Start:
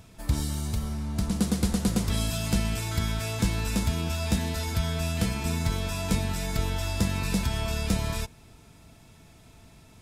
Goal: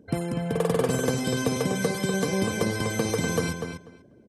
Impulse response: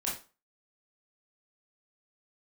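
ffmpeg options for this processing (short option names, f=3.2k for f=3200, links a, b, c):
-filter_complex "[0:a]lowpass=f=4.7k:w=0.5412,lowpass=f=4.7k:w=1.3066,afftdn=nr=27:nf=-44,highpass=f=65:p=1,asplit=2[a][b];[b]adelay=574,lowpass=f=1.8k:p=1,volume=-6dB,asplit=2[c][d];[d]adelay=574,lowpass=f=1.8k:p=1,volume=0.16,asplit=2[e][f];[f]adelay=574,lowpass=f=1.8k:p=1,volume=0.16[g];[c][e][g]amix=inputs=3:normalize=0[h];[a][h]amix=inputs=2:normalize=0,asetrate=103194,aresample=44100,volume=2dB"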